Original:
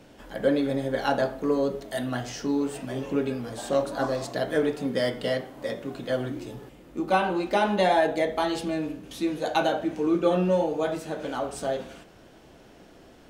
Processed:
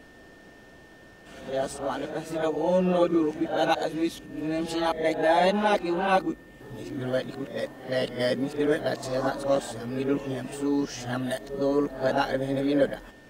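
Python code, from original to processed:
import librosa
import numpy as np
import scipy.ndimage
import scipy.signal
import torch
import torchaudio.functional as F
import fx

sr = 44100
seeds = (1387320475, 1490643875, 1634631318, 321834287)

y = x[::-1].copy()
y = y + 10.0 ** (-54.0 / 20.0) * np.sin(2.0 * np.pi * 1800.0 * np.arange(len(y)) / sr)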